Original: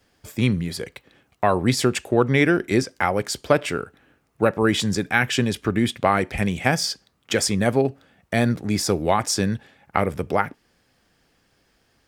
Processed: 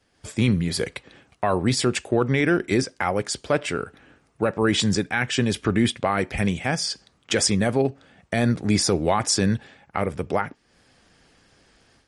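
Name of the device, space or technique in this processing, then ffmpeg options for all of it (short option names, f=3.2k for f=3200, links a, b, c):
low-bitrate web radio: -af "dynaudnorm=f=130:g=3:m=10dB,alimiter=limit=-5.5dB:level=0:latency=1:release=12,volume=-3.5dB" -ar 48000 -c:a libmp3lame -b:a 48k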